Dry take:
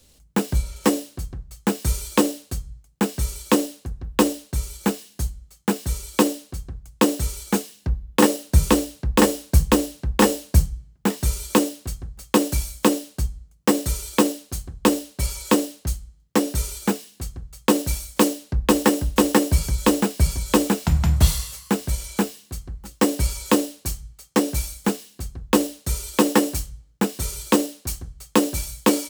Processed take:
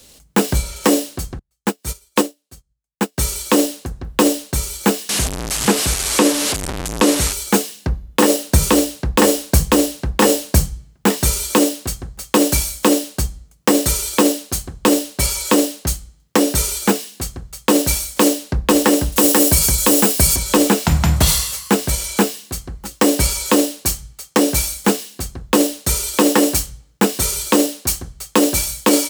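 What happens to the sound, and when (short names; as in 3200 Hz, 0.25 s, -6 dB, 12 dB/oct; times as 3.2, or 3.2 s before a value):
1.39–3.18 upward expander 2.5:1, over -37 dBFS
5.09–7.33 delta modulation 64 kbps, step -23.5 dBFS
19.12–20.36 high shelf 6800 Hz +11 dB
whole clip: low shelf 150 Hz -11 dB; maximiser +12.5 dB; gain -1 dB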